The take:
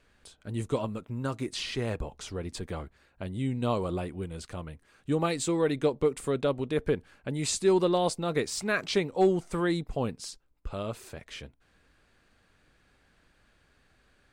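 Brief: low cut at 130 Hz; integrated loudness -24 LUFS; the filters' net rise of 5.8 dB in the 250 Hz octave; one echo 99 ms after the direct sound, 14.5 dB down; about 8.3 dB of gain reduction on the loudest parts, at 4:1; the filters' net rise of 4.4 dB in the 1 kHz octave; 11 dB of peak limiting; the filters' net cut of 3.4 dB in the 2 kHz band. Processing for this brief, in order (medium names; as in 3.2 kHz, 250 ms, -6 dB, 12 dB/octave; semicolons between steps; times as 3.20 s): high-pass 130 Hz; peaking EQ 250 Hz +8.5 dB; peaking EQ 1 kHz +7 dB; peaking EQ 2 kHz -7.5 dB; compression 4:1, threshold -25 dBFS; peak limiter -26.5 dBFS; delay 99 ms -14.5 dB; trim +13 dB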